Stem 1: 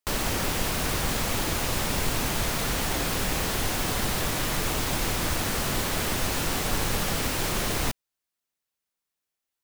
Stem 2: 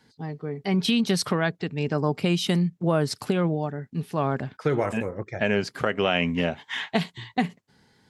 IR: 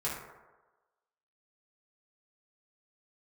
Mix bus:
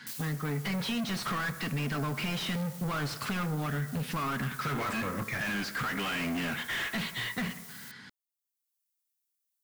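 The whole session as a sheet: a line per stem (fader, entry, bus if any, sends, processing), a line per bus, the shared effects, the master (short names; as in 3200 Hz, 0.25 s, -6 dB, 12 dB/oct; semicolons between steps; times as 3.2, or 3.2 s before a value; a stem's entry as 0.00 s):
+0.5 dB, 0.00 s, no send, differentiator; limiter -27.5 dBFS, peak gain reduction 9.5 dB; auto duck -12 dB, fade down 0.35 s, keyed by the second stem
-13.0 dB, 0.00 s, send -13.5 dB, band shelf 560 Hz -15 dB; overdrive pedal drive 38 dB, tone 2000 Hz, clips at -10.5 dBFS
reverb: on, RT60 1.2 s, pre-delay 3 ms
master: compressor, threshold -29 dBFS, peak gain reduction 4.5 dB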